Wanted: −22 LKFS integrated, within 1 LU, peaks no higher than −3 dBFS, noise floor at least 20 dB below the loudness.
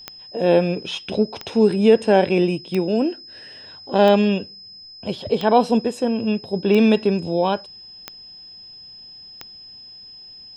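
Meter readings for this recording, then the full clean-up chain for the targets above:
number of clicks 8; interfering tone 5,100 Hz; level of the tone −39 dBFS; integrated loudness −19.5 LKFS; sample peak −2.5 dBFS; target loudness −22.0 LKFS
→ click removal
notch filter 5,100 Hz, Q 30
level −2.5 dB

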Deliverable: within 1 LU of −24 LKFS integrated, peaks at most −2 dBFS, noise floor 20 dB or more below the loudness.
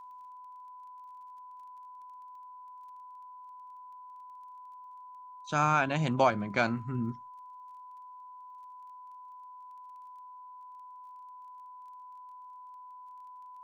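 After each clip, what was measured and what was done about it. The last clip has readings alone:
crackle rate 16 per second; interfering tone 1,000 Hz; level of the tone −46 dBFS; integrated loudness −29.0 LKFS; sample peak −11.0 dBFS; target loudness −24.0 LKFS
→ click removal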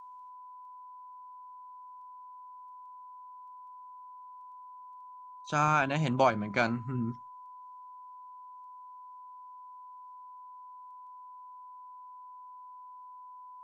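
crackle rate 0.073 per second; interfering tone 1,000 Hz; level of the tone −46 dBFS
→ notch filter 1,000 Hz, Q 30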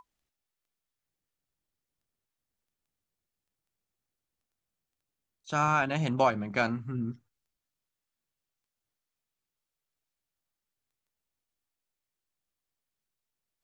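interfering tone none found; integrated loudness −29.0 LKFS; sample peak −11.5 dBFS; target loudness −24.0 LKFS
→ level +5 dB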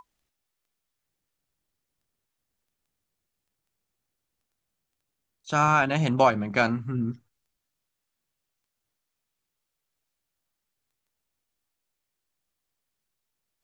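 integrated loudness −24.0 LKFS; sample peak −6.5 dBFS; background noise floor −83 dBFS

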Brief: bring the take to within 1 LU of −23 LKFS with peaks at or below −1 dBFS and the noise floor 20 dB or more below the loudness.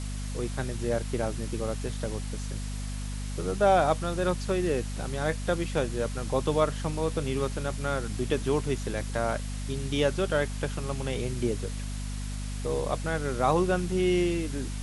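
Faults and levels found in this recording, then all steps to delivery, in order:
mains hum 50 Hz; hum harmonics up to 250 Hz; level of the hum −31 dBFS; background noise floor −34 dBFS; target noise floor −50 dBFS; integrated loudness −29.5 LKFS; sample peak −10.5 dBFS; target loudness −23.0 LKFS
→ mains-hum notches 50/100/150/200/250 Hz
broadband denoise 16 dB, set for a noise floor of −34 dBFS
level +6.5 dB

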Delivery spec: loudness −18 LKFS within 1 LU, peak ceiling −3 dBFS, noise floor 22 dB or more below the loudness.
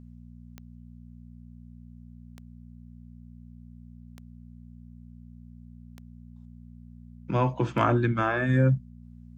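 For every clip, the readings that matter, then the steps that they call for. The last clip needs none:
number of clicks 5; mains hum 60 Hz; hum harmonics up to 240 Hz; level of the hum −44 dBFS; integrated loudness −25.5 LKFS; sample peak −7.5 dBFS; target loudness −18.0 LKFS
→ click removal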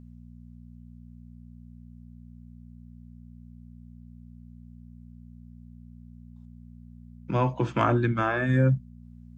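number of clicks 0; mains hum 60 Hz; hum harmonics up to 240 Hz; level of the hum −44 dBFS
→ hum removal 60 Hz, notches 4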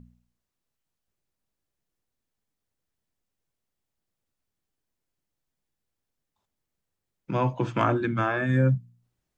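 mains hum none found; integrated loudness −25.5 LKFS; sample peak −8.0 dBFS; target loudness −18.0 LKFS
→ level +7.5 dB
brickwall limiter −3 dBFS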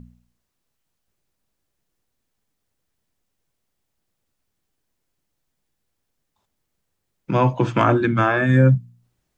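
integrated loudness −18.5 LKFS; sample peak −3.0 dBFS; background noise floor −77 dBFS

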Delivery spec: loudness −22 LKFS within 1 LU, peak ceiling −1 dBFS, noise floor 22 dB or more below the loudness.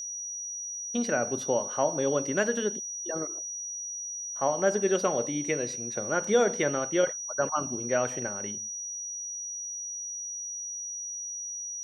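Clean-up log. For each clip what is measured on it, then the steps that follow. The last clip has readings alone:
crackle rate 49 per second; interfering tone 5,800 Hz; level of the tone −34 dBFS; integrated loudness −29.5 LKFS; sample peak −12.5 dBFS; target loudness −22.0 LKFS
→ click removal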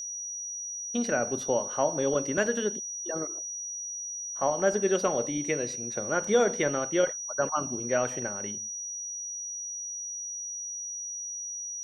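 crackle rate 0 per second; interfering tone 5,800 Hz; level of the tone −34 dBFS
→ notch filter 5,800 Hz, Q 30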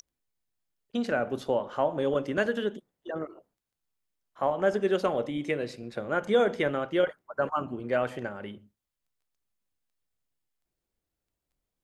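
interfering tone none found; integrated loudness −29.5 LKFS; sample peak −12.5 dBFS; target loudness −22.0 LKFS
→ level +7.5 dB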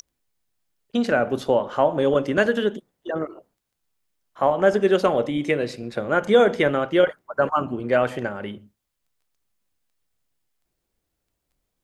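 integrated loudness −22.0 LKFS; sample peak −5.0 dBFS; background noise floor −79 dBFS

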